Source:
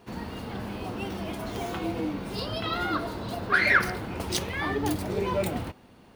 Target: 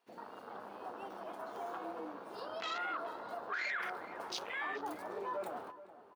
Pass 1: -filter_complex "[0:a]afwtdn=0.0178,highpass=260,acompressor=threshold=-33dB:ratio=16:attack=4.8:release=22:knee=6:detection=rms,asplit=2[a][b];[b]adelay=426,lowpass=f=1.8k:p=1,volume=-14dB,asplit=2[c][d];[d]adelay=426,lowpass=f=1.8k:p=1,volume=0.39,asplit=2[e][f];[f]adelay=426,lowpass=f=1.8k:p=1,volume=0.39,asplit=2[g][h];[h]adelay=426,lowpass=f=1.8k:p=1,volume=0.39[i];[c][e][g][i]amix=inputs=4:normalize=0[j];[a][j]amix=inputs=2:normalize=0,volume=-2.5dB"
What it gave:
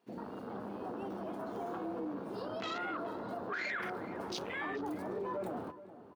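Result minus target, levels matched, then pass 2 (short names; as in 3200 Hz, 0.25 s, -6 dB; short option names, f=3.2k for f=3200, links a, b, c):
250 Hz band +8.5 dB
-filter_complex "[0:a]afwtdn=0.0178,highpass=700,acompressor=threshold=-33dB:ratio=16:attack=4.8:release=22:knee=6:detection=rms,asplit=2[a][b];[b]adelay=426,lowpass=f=1.8k:p=1,volume=-14dB,asplit=2[c][d];[d]adelay=426,lowpass=f=1.8k:p=1,volume=0.39,asplit=2[e][f];[f]adelay=426,lowpass=f=1.8k:p=1,volume=0.39,asplit=2[g][h];[h]adelay=426,lowpass=f=1.8k:p=1,volume=0.39[i];[c][e][g][i]amix=inputs=4:normalize=0[j];[a][j]amix=inputs=2:normalize=0,volume=-2.5dB"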